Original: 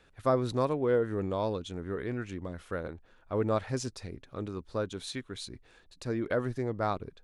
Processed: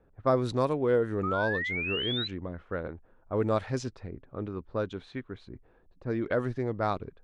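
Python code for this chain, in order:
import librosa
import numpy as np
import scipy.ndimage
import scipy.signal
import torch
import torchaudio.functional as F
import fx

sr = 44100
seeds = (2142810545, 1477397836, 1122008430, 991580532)

y = fx.spec_paint(x, sr, seeds[0], shape='rise', start_s=1.23, length_s=1.05, low_hz=1200.0, high_hz=4100.0, level_db=-34.0)
y = fx.env_lowpass(y, sr, base_hz=740.0, full_db=-24.0)
y = y * 10.0 ** (1.5 / 20.0)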